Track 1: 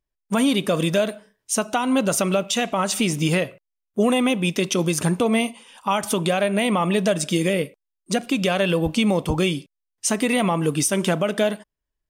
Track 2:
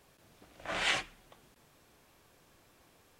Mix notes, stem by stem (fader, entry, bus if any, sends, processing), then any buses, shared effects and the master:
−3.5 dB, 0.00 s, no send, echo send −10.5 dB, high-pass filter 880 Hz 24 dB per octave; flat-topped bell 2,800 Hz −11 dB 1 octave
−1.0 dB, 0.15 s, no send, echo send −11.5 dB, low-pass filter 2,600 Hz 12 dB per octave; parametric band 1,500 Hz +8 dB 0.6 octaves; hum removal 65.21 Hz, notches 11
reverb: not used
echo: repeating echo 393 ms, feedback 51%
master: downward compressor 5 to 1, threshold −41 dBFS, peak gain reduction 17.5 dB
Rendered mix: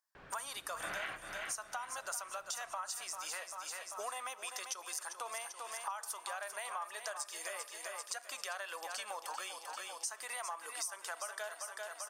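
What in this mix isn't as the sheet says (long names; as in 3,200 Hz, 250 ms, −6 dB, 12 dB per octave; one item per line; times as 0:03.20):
stem 1 −3.5 dB → +4.0 dB
stem 2 −1.0 dB → +8.5 dB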